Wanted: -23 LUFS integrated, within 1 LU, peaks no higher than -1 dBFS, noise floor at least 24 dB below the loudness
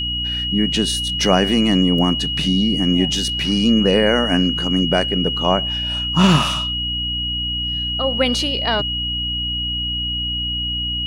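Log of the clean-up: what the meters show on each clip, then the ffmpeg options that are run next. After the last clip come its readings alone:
hum 60 Hz; harmonics up to 300 Hz; hum level -27 dBFS; steady tone 2900 Hz; tone level -21 dBFS; loudness -18.0 LUFS; peak -1.0 dBFS; loudness target -23.0 LUFS
-> -af "bandreject=f=60:t=h:w=4,bandreject=f=120:t=h:w=4,bandreject=f=180:t=h:w=4,bandreject=f=240:t=h:w=4,bandreject=f=300:t=h:w=4"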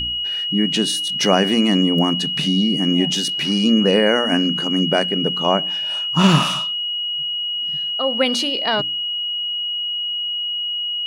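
hum none; steady tone 2900 Hz; tone level -21 dBFS
-> -af "bandreject=f=2.9k:w=30"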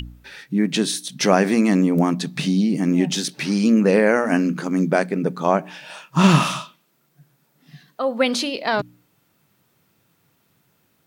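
steady tone none; loudness -19.5 LUFS; peak -1.5 dBFS; loudness target -23.0 LUFS
-> -af "volume=-3.5dB"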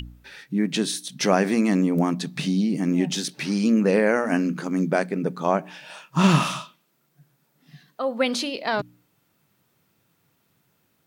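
loudness -23.0 LUFS; peak -5.0 dBFS; noise floor -69 dBFS

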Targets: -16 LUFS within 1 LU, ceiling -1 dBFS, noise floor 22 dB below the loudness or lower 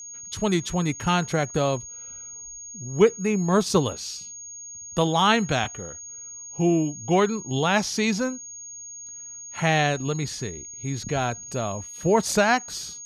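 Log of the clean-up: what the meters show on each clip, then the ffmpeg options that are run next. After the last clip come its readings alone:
steady tone 6600 Hz; tone level -37 dBFS; loudness -24.0 LUFS; peak -5.0 dBFS; loudness target -16.0 LUFS
-> -af "bandreject=f=6.6k:w=30"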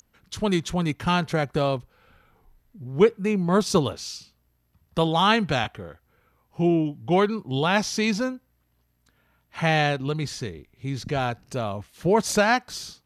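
steady tone none; loudness -24.0 LUFS; peak -5.0 dBFS; loudness target -16.0 LUFS
-> -af "volume=8dB,alimiter=limit=-1dB:level=0:latency=1"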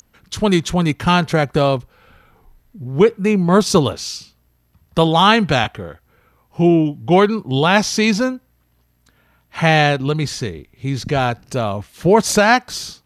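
loudness -16.5 LUFS; peak -1.0 dBFS; noise floor -61 dBFS

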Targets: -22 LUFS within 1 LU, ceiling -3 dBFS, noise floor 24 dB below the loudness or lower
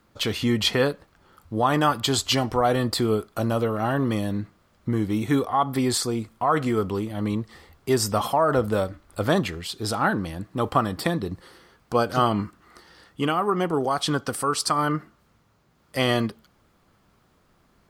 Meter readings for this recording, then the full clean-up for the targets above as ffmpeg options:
loudness -24.5 LUFS; peak -6.5 dBFS; loudness target -22.0 LUFS
-> -af "volume=2.5dB"

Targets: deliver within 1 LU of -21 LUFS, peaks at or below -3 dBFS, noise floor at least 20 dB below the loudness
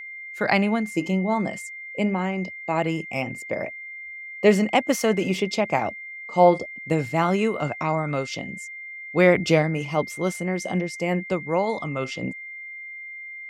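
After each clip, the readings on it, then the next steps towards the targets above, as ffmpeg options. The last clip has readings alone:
steady tone 2100 Hz; tone level -35 dBFS; loudness -24.0 LUFS; peak -4.0 dBFS; loudness target -21.0 LUFS
-> -af "bandreject=f=2.1k:w=30"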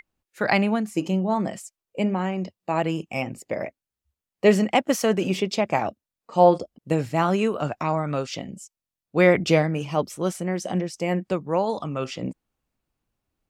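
steady tone none; loudness -24.0 LUFS; peak -4.5 dBFS; loudness target -21.0 LUFS
-> -af "volume=3dB,alimiter=limit=-3dB:level=0:latency=1"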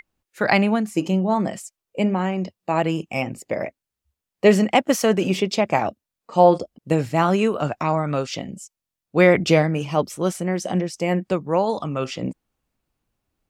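loudness -21.5 LUFS; peak -3.0 dBFS; noise floor -86 dBFS

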